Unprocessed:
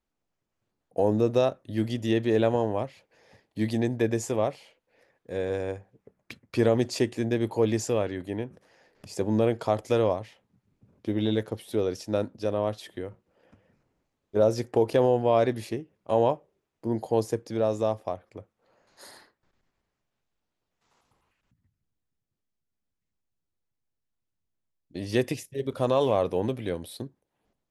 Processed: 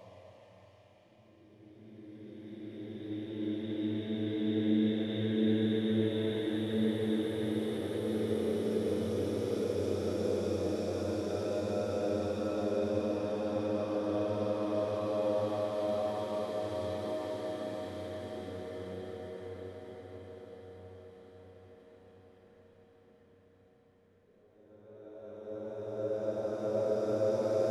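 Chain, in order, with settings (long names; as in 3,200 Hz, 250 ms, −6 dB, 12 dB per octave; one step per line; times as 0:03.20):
extreme stretch with random phases 7.1×, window 1.00 s, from 0:10.49
feedback delay with all-pass diffusion 607 ms, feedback 69%, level −10 dB
spring reverb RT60 3 s, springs 32/54 ms, chirp 45 ms, DRR 0.5 dB
level −7.5 dB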